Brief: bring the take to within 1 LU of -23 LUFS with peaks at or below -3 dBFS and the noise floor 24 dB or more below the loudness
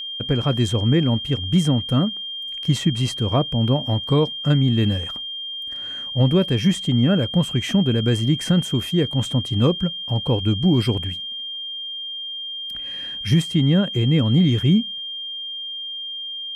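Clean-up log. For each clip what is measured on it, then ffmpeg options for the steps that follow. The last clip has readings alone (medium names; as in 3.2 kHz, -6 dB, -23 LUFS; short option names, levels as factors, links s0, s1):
steady tone 3.2 kHz; tone level -28 dBFS; loudness -21.0 LUFS; peak level -7.5 dBFS; loudness target -23.0 LUFS
-> -af "bandreject=f=3200:w=30"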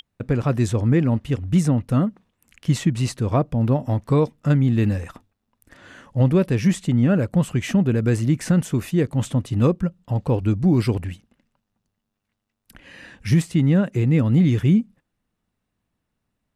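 steady tone not found; loudness -20.5 LUFS; peak level -8.5 dBFS; loudness target -23.0 LUFS
-> -af "volume=0.75"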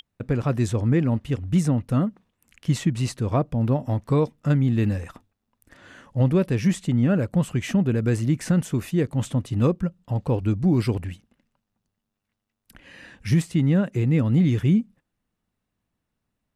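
loudness -23.0 LUFS; peak level -11.0 dBFS; noise floor -81 dBFS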